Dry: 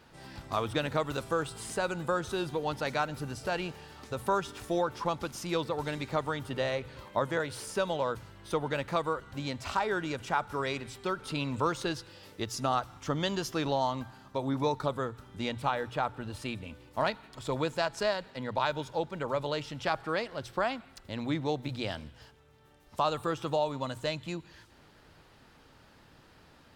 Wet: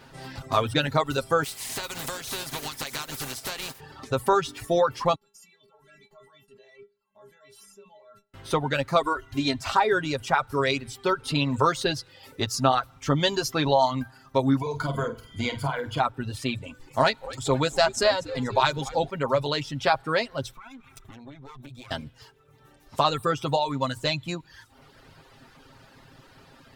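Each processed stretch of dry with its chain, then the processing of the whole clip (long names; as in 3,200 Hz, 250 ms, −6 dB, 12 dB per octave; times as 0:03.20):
0:01.43–0:03.79: compressing power law on the bin magnitudes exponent 0.35 + downward compressor 8 to 1, threshold −35 dBFS
0:05.15–0:08.34: output level in coarse steps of 22 dB + stiff-string resonator 200 Hz, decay 0.44 s, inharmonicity 0.008
0:09.01–0:09.61: parametric band 790 Hz −4 dB 0.25 octaves + comb filter 2.9 ms, depth 75%
0:14.61–0:16.00: EQ curve with evenly spaced ripples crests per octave 1.8, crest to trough 13 dB + downward compressor 16 to 1, threshold −30 dBFS + flutter between parallel walls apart 8.4 metres, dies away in 0.51 s
0:16.55–0:19.10: parametric band 7,400 Hz +7.5 dB 0.66 octaves + echo with shifted repeats 240 ms, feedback 59%, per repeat −110 Hz, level −13.5 dB
0:20.52–0:21.91: lower of the sound and its delayed copy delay 0.85 ms + notch filter 4,700 Hz, Q 6.5 + downward compressor 10 to 1, threshold −48 dBFS
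whole clip: reverb reduction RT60 0.93 s; dynamic equaliser 4,000 Hz, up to +4 dB, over −53 dBFS, Q 5; comb filter 7.5 ms, depth 54%; level +7 dB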